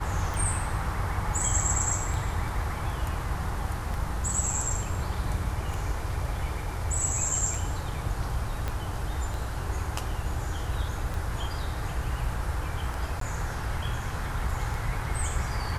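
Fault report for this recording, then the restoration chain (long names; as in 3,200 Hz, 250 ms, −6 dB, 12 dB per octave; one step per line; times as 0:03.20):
scratch tick 33 1/3 rpm
0:08.68: click −16 dBFS
0:13.20–0:13.21: drop-out 13 ms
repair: click removal
repair the gap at 0:13.20, 13 ms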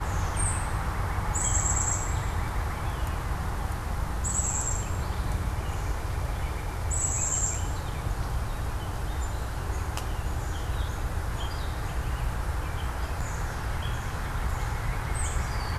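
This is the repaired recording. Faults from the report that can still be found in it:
0:08.68: click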